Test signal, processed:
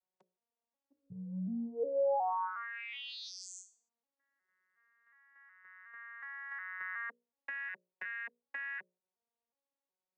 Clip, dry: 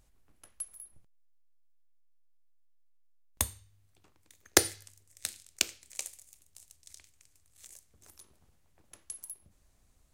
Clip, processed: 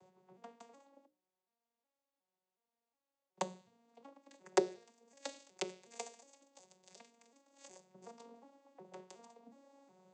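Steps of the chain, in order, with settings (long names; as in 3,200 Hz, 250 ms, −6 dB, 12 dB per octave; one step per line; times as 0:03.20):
vocoder with an arpeggio as carrier major triad, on F#3, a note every 366 ms
downward compressor 2 to 1, threshold −49 dBFS
flat-topped bell 630 Hz +9.5 dB
mains-hum notches 60/120/180/240/300/360/420/480/540/600 Hz
level +4 dB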